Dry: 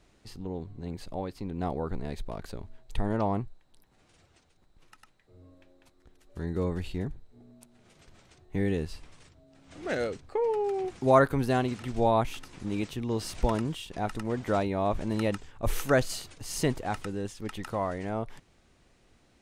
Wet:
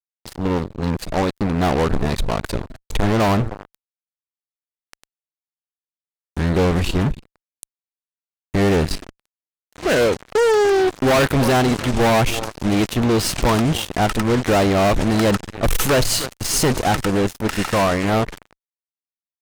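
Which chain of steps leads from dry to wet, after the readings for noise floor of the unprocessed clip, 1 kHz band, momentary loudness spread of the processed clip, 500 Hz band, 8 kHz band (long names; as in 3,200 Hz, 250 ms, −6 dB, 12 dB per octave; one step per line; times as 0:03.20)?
−64 dBFS, +10.5 dB, 9 LU, +10.5 dB, +16.5 dB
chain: healed spectral selection 0:17.53–0:17.79, 1,400–9,900 Hz before
echo with shifted repeats 294 ms, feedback 37%, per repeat −120 Hz, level −21.5 dB
fuzz pedal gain 35 dB, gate −41 dBFS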